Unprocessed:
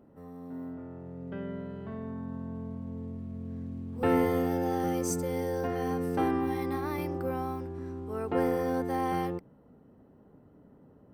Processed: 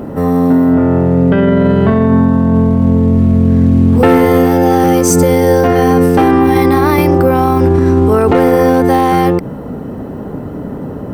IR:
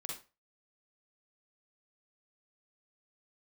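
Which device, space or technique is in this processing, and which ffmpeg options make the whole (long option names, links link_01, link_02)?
loud club master: -af "acompressor=threshold=-33dB:ratio=2.5,asoftclip=type=hard:threshold=-27dB,alimiter=level_in=35dB:limit=-1dB:release=50:level=0:latency=1,volume=-1dB"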